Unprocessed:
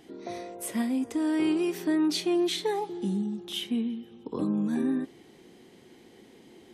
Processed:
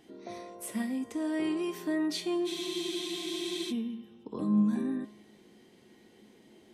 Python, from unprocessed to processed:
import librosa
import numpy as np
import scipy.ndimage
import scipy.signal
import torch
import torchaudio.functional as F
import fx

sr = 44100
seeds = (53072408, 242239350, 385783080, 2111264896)

y = fx.comb_fb(x, sr, f0_hz=210.0, decay_s=0.7, harmonics='odd', damping=0.0, mix_pct=80)
y = fx.spec_freeze(y, sr, seeds[0], at_s=2.48, hold_s=1.23)
y = y * librosa.db_to_amplitude(8.0)